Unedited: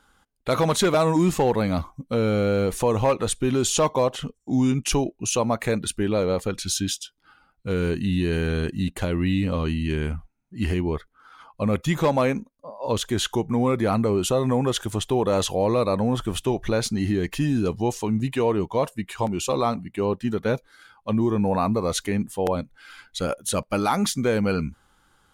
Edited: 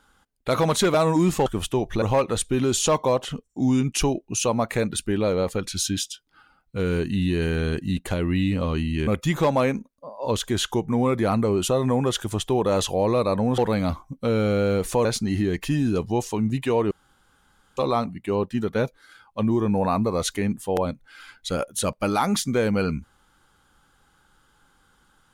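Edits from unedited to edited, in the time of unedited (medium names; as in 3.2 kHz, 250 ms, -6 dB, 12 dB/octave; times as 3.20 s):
1.46–2.93 s: swap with 16.19–16.75 s
9.98–11.68 s: delete
18.61–19.47 s: room tone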